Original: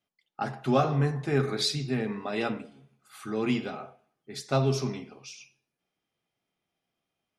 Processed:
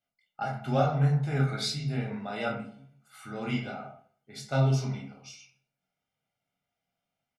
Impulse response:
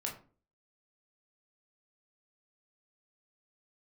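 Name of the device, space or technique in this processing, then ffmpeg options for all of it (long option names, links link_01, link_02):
microphone above a desk: -filter_complex "[0:a]aecho=1:1:1.4:0.56[link_01];[1:a]atrim=start_sample=2205[link_02];[link_01][link_02]afir=irnorm=-1:irlink=0,volume=-4dB"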